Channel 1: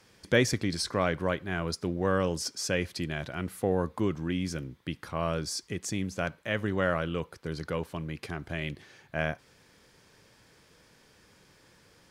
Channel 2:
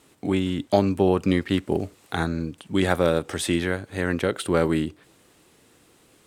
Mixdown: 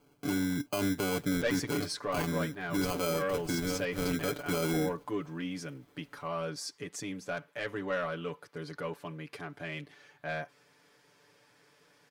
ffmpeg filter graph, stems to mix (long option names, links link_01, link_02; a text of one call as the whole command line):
ffmpeg -i stem1.wav -i stem2.wav -filter_complex "[0:a]highpass=frequency=400:poles=1,highshelf=frequency=3500:gain=-8.5,asoftclip=type=tanh:threshold=-22.5dB,adelay=1100,volume=-3dB[link_01];[1:a]lowpass=frequency=2300:width=0.5412,lowpass=frequency=2300:width=1.3066,acrusher=samples=24:mix=1:aa=0.000001,volume=-8.5dB[link_02];[link_01][link_02]amix=inputs=2:normalize=0,highshelf=frequency=9300:gain=5.5,aecho=1:1:6.9:0.87,alimiter=limit=-21.5dB:level=0:latency=1:release=28" out.wav